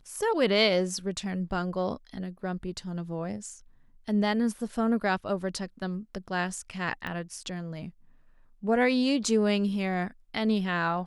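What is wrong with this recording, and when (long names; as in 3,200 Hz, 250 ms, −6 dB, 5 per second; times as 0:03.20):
0:07.07: click −22 dBFS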